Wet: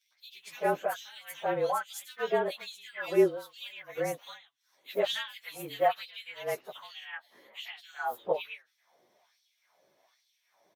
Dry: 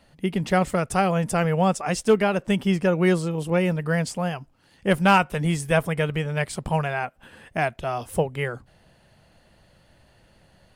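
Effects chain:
partials spread apart or drawn together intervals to 109%
auto-filter high-pass sine 1.2 Hz 350–4,400 Hz
multiband delay without the direct sound highs, lows 110 ms, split 2,600 Hz
level −6.5 dB

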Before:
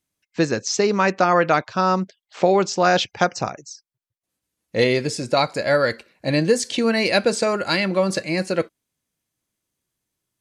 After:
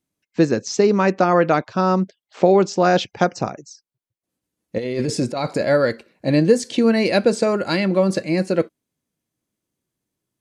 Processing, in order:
parametric band 260 Hz +9 dB 2.9 octaves
0:04.78–0:05.65: compressor whose output falls as the input rises −18 dBFS, ratio −1
level −4 dB

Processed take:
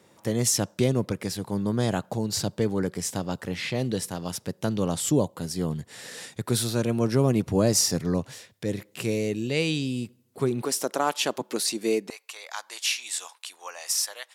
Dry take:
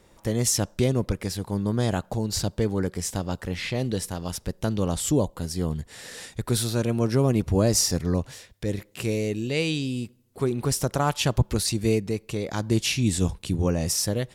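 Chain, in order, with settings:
high-pass filter 110 Hz 24 dB per octave, from 0:10.62 260 Hz, from 0:12.10 860 Hz

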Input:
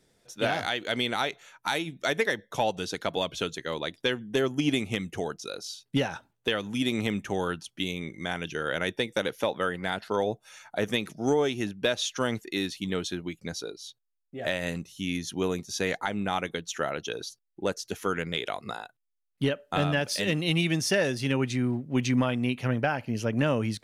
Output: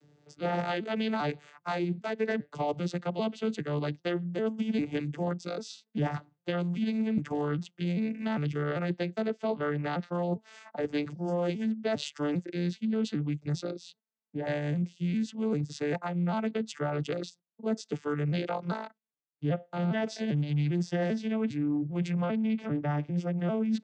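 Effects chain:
vocoder with an arpeggio as carrier minor triad, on D3, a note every 398 ms
reversed playback
downward compressor 6 to 1, threshold −34 dBFS, peak gain reduction 14.5 dB
reversed playback
level +7 dB

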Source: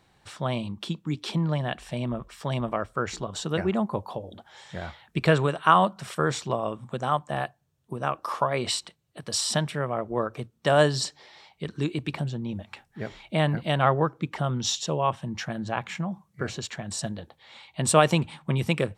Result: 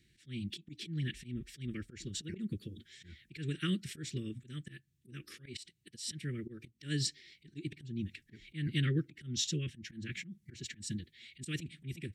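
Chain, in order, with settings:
elliptic band-stop filter 350–1,900 Hz, stop band 60 dB
volume swells 323 ms
phase-vocoder stretch with locked phases 0.64×
level −2.5 dB

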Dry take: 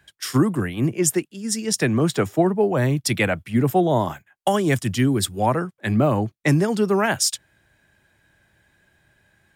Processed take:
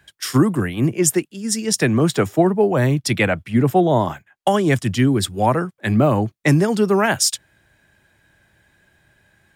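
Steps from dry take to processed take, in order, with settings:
0:02.95–0:05.38: high-shelf EQ 8,100 Hz −8 dB
level +3 dB

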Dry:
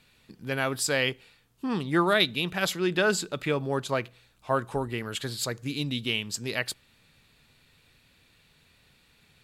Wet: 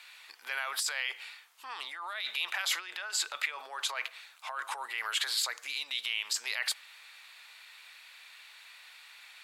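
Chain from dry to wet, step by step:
compressor whose output falls as the input rises −34 dBFS, ratio −1
high-shelf EQ 7,300 Hz −4 dB
brickwall limiter −25 dBFS, peak gain reduction 11 dB
high-pass filter 860 Hz 24 dB per octave
parametric band 2,100 Hz +4 dB 0.26 octaves
level +5.5 dB

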